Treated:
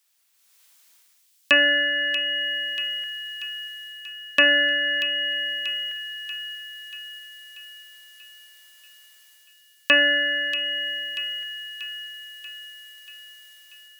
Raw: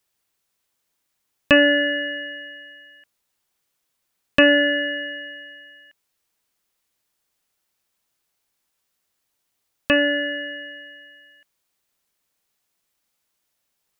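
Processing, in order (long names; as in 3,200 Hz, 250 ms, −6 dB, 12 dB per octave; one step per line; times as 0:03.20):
high-pass filter 240 Hz 6 dB per octave
tilt shelving filter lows −8 dB, about 890 Hz
automatic gain control gain up to 12 dB
delay with a high-pass on its return 636 ms, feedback 57%, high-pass 3,000 Hz, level −5 dB
level −1 dB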